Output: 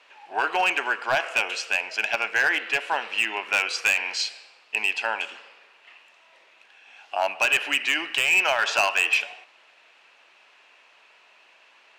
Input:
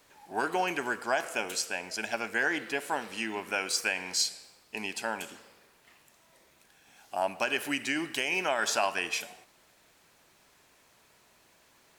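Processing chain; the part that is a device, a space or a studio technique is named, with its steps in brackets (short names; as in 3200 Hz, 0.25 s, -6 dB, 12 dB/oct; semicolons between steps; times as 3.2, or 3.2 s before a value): megaphone (BPF 620–3500 Hz; bell 2700 Hz +10 dB 0.36 oct; hard clip -22 dBFS, distortion -12 dB); gain +7.5 dB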